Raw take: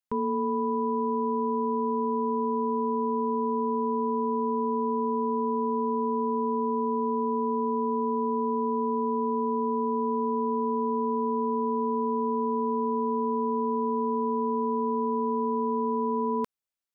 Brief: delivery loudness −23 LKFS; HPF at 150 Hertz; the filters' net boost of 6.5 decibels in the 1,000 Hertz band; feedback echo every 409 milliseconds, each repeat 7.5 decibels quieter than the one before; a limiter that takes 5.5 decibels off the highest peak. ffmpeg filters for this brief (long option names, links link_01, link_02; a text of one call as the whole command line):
ffmpeg -i in.wav -af "highpass=150,equalizer=frequency=1000:width_type=o:gain=6.5,alimiter=limit=-22dB:level=0:latency=1,aecho=1:1:409|818|1227|1636|2045:0.422|0.177|0.0744|0.0312|0.0131,volume=2dB" out.wav